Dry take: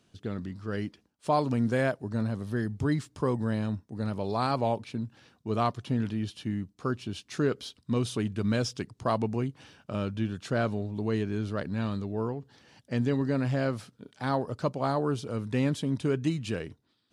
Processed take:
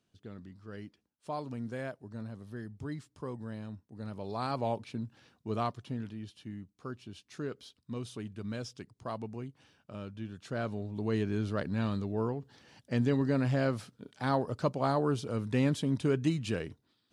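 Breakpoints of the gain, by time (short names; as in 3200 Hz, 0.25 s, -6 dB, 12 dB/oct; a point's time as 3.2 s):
3.74 s -12 dB
4.77 s -4 dB
5.48 s -4 dB
6.15 s -11 dB
10.19 s -11 dB
11.26 s -1 dB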